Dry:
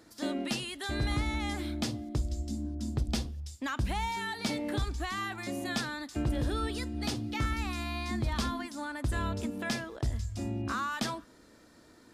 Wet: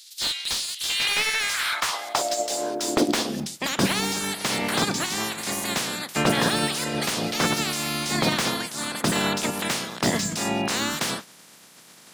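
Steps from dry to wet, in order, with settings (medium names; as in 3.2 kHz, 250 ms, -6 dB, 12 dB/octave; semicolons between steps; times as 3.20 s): spectral peaks clipped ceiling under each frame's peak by 30 dB; high-pass sweep 4 kHz -> 170 Hz, 0.69–3.54 s; slew-rate limiter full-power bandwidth 130 Hz; trim +8 dB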